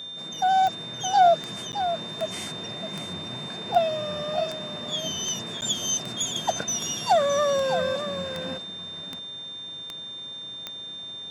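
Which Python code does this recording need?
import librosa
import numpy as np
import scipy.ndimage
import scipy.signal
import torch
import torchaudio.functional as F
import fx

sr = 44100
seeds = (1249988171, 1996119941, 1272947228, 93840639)

y = fx.fix_declick_ar(x, sr, threshold=10.0)
y = fx.notch(y, sr, hz=3600.0, q=30.0)
y = fx.fix_interpolate(y, sr, at_s=(1.72, 5.61), length_ms=9.9)
y = fx.fix_echo_inverse(y, sr, delay_ms=616, level_db=-9.5)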